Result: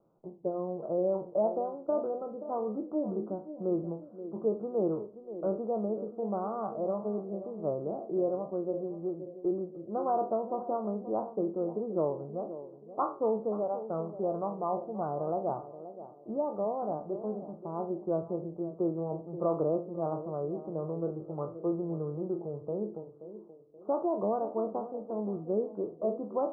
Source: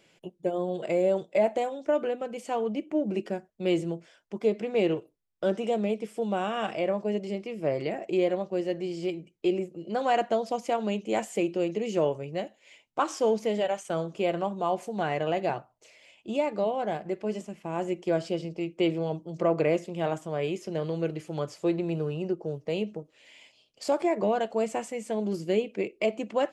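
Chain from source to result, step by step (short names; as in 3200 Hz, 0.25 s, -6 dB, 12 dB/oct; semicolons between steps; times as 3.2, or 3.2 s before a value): spectral trails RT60 0.33 s; steep low-pass 1300 Hz 96 dB/oct; narrowing echo 0.528 s, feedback 45%, band-pass 360 Hz, level -11.5 dB; gain -5 dB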